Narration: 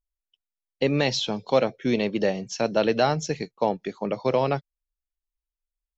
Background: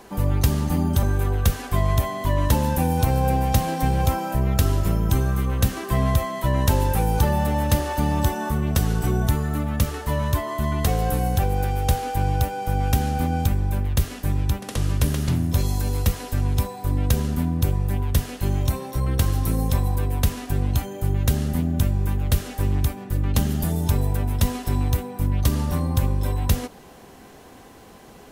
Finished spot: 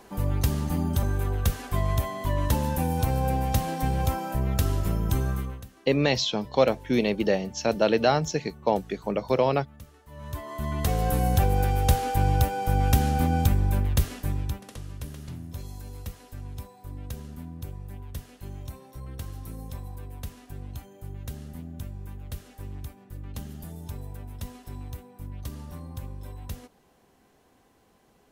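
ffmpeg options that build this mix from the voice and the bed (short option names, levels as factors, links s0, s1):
-filter_complex "[0:a]adelay=5050,volume=1[s0];[1:a]volume=9.44,afade=t=out:st=5.31:d=0.33:silence=0.1,afade=t=in:st=10.1:d=1.24:silence=0.0595662,afade=t=out:st=13.77:d=1.05:silence=0.158489[s1];[s0][s1]amix=inputs=2:normalize=0"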